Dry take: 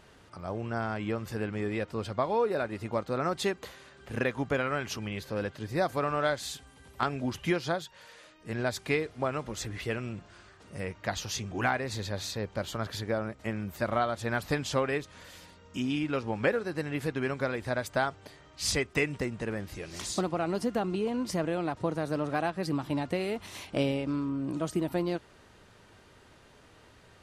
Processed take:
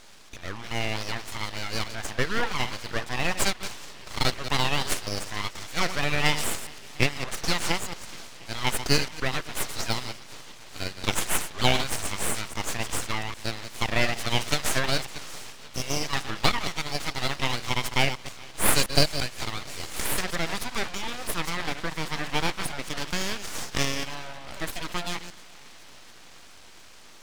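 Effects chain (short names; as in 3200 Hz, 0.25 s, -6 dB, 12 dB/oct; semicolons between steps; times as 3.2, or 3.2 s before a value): reverse delay 0.115 s, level -10 dB; BPF 390–5100 Hz; tilt shelf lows -9.5 dB, about 1100 Hz; on a send: swung echo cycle 0.701 s, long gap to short 1.5:1, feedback 71%, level -23.5 dB; on the sum: full-wave rectifier; gain +8 dB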